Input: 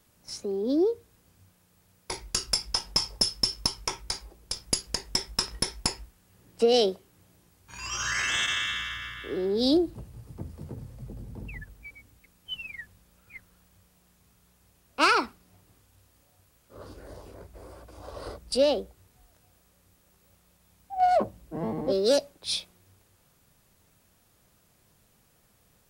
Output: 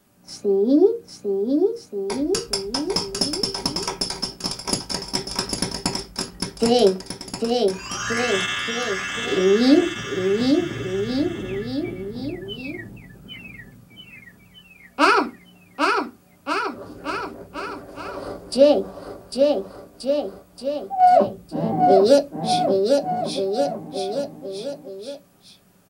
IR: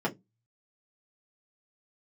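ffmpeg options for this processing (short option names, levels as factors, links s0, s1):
-filter_complex "[0:a]aecho=1:1:800|1480|2058|2549|2967:0.631|0.398|0.251|0.158|0.1,asplit=2[s0][s1];[1:a]atrim=start_sample=2205,asetrate=37485,aresample=44100[s2];[s1][s2]afir=irnorm=-1:irlink=0,volume=0.376[s3];[s0][s3]amix=inputs=2:normalize=0"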